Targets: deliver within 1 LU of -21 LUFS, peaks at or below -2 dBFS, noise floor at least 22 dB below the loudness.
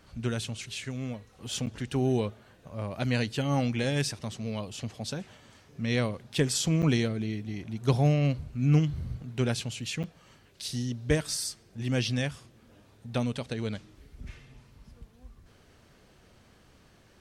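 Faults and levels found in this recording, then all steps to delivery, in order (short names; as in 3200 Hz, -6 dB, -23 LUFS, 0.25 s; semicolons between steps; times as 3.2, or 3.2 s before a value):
dropouts 3; longest dropout 7.8 ms; loudness -30.5 LUFS; peak -10.5 dBFS; loudness target -21.0 LUFS
-> interpolate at 1.66/6.82/10.03, 7.8 ms; gain +9.5 dB; limiter -2 dBFS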